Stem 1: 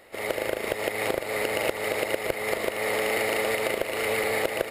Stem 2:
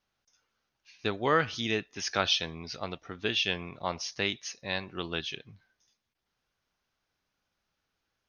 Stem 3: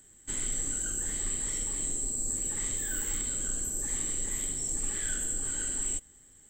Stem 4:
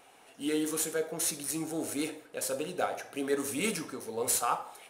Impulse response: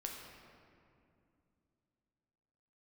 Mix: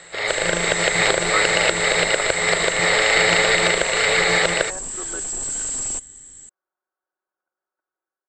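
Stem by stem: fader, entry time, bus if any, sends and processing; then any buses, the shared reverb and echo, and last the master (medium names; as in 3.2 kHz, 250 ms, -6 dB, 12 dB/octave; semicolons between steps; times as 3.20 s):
+3.0 dB, 0.00 s, send -8.5 dB, fifteen-band graphic EQ 250 Hz -11 dB, 1.6 kHz +8 dB, 4 kHz +12 dB
+0.5 dB, 0.00 s, no send, Chebyshev band-pass 330–1500 Hz, order 3; comb 5.4 ms, depth 69%; level held to a coarse grid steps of 12 dB
+3.0 dB, 0.00 s, no send, treble shelf 5 kHz +10.5 dB; overload inside the chain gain 32 dB
-0.5 dB, 0.00 s, no send, sorted samples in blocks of 256 samples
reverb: on, RT60 2.6 s, pre-delay 7 ms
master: Chebyshev low-pass 8.2 kHz, order 10; level rider gain up to 5.5 dB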